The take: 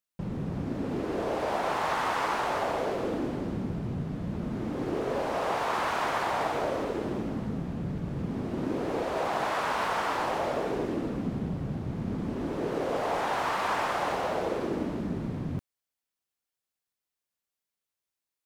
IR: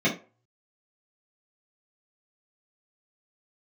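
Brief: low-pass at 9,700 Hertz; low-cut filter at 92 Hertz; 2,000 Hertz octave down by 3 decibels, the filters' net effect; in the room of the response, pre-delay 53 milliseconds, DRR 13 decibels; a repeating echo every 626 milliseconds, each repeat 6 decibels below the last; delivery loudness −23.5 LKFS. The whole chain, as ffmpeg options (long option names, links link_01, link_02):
-filter_complex "[0:a]highpass=92,lowpass=9700,equalizer=frequency=2000:width_type=o:gain=-4,aecho=1:1:626|1252|1878|2504|3130|3756:0.501|0.251|0.125|0.0626|0.0313|0.0157,asplit=2[link_01][link_02];[1:a]atrim=start_sample=2205,adelay=53[link_03];[link_02][link_03]afir=irnorm=-1:irlink=0,volume=-27.5dB[link_04];[link_01][link_04]amix=inputs=2:normalize=0,volume=6.5dB"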